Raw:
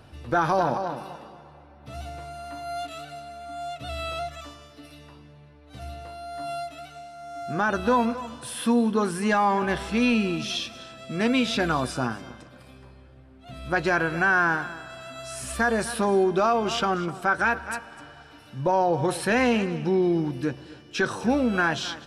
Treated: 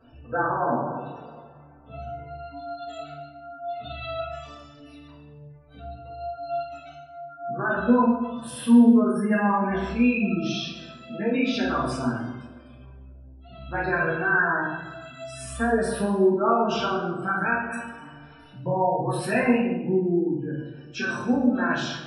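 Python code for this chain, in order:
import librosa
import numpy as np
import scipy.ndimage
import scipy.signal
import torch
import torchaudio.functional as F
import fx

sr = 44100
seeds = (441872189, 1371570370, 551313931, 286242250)

p1 = fx.low_shelf(x, sr, hz=63.0, db=-5.0)
p2 = fx.spec_gate(p1, sr, threshold_db=-20, keep='strong')
p3 = fx.chorus_voices(p2, sr, voices=6, hz=0.25, base_ms=12, depth_ms=4.2, mix_pct=55)
p4 = p3 + fx.echo_feedback(p3, sr, ms=138, feedback_pct=27, wet_db=-17.5, dry=0)
p5 = fx.room_shoebox(p4, sr, seeds[0], volume_m3=240.0, walls='mixed', distance_m=1.6)
y = p5 * librosa.db_to_amplitude(-3.5)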